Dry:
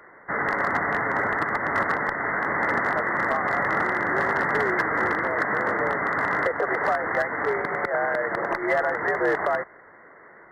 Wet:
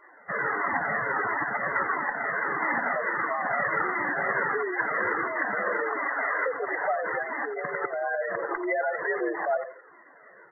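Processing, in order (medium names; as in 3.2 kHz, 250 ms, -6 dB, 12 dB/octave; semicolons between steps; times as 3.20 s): 5.64–6.47 s: high-pass 130 Hz -> 310 Hz 12 dB/octave; spectral gate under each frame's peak -10 dB strong; feedback delay 86 ms, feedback 31%, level -10.5 dB; Shepard-style flanger falling 1.5 Hz; trim +1.5 dB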